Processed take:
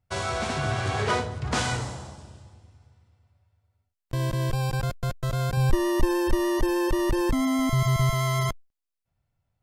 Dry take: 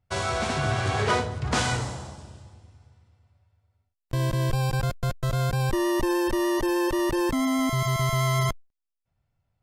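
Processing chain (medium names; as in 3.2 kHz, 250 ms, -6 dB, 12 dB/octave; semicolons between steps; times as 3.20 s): 5.57–8.11 s: bass shelf 110 Hz +12 dB; trim -1.5 dB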